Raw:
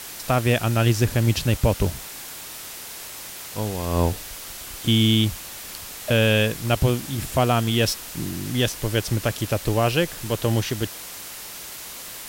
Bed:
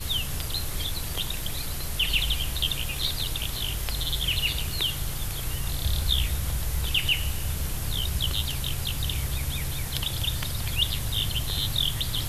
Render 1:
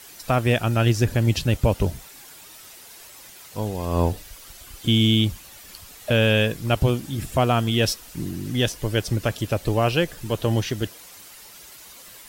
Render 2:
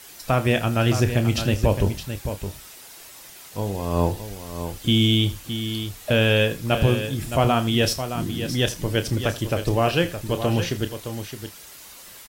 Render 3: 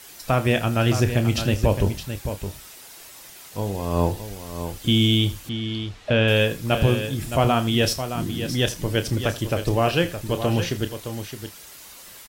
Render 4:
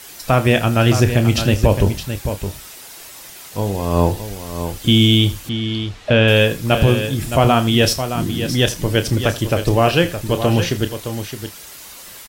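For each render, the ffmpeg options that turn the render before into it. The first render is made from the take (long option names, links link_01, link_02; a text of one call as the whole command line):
ffmpeg -i in.wav -af "afftdn=noise_reduction=10:noise_floor=-37" out.wav
ffmpeg -i in.wav -filter_complex "[0:a]asplit=2[link_01][link_02];[link_02]adelay=30,volume=-10.5dB[link_03];[link_01][link_03]amix=inputs=2:normalize=0,asplit=2[link_04][link_05];[link_05]aecho=0:1:80|616:0.133|0.335[link_06];[link_04][link_06]amix=inputs=2:normalize=0" out.wav
ffmpeg -i in.wav -filter_complex "[0:a]asettb=1/sr,asplit=3[link_01][link_02][link_03];[link_01]atrim=end=5.494[link_04];[link_02]atrim=start=5.49:end=6.28,asetpts=PTS-STARTPTS,afade=type=in:duration=0.004:curve=qsin,afade=type=out:start_time=0.786:duration=0.004:curve=qsin,lowpass=3900[link_05];[link_03]atrim=start=6.276[link_06];[link_04][link_05]acrossfade=duration=0.004:curve1=hsin:curve2=qsin[link_07];[link_07][link_06]acrossfade=duration=0.004:curve1=qsin:curve2=hsin" out.wav
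ffmpeg -i in.wav -af "volume=6dB,alimiter=limit=-2dB:level=0:latency=1" out.wav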